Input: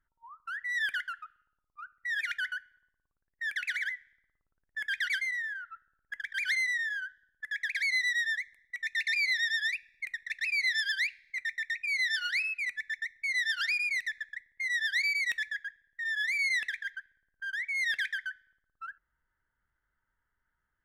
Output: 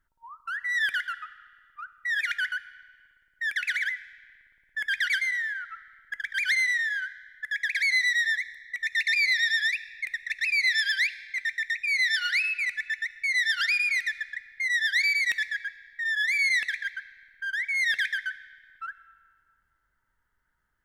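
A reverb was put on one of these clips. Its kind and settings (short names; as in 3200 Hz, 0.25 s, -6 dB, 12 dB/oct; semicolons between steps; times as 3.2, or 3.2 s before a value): digital reverb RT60 2 s, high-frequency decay 0.75×, pre-delay 20 ms, DRR 15.5 dB; gain +5 dB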